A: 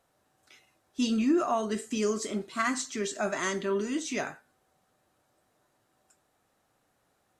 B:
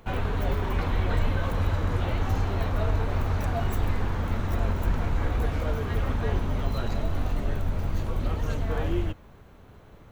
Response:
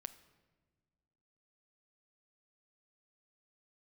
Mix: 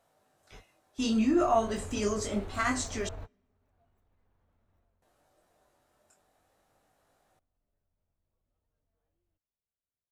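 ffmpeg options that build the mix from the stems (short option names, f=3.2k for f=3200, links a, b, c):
-filter_complex "[0:a]bandreject=f=60:t=h:w=6,bandreject=f=120:t=h:w=6,bandreject=f=180:t=h:w=6,bandreject=f=240:t=h:w=6,bandreject=f=300:t=h:w=6,bandreject=f=360:t=h:w=6,bandreject=f=420:t=h:w=6,flanger=delay=19.5:depth=3.5:speed=0.42,volume=1dB,asplit=3[a][b][c];[a]atrim=end=3.09,asetpts=PTS-STARTPTS,afade=t=out:st=3.086:d=0.004:c=hsin[d];[b]atrim=start=3.09:end=5.02,asetpts=PTS-STARTPTS,volume=0[e];[c]atrim=start=5.02,asetpts=PTS-STARTPTS,afade=t=in:d=0.004:c=hsin[f];[d][e][f]concat=n=3:v=0:a=1,asplit=3[g][h][i];[h]volume=-11.5dB[j];[1:a]alimiter=limit=-20.5dB:level=0:latency=1:release=63,adelay=250,volume=-2dB,afade=t=in:st=1.15:d=0.57:silence=0.421697,afade=t=in:st=3.21:d=0.61:silence=0.266073,afade=t=out:st=4.78:d=0.33:silence=0.316228[k];[i]apad=whole_len=457039[l];[k][l]sidechaingate=range=-42dB:threshold=-58dB:ratio=16:detection=peak[m];[2:a]atrim=start_sample=2205[n];[j][n]afir=irnorm=-1:irlink=0[o];[g][m][o]amix=inputs=3:normalize=0,equalizer=f=640:t=o:w=0.69:g=5"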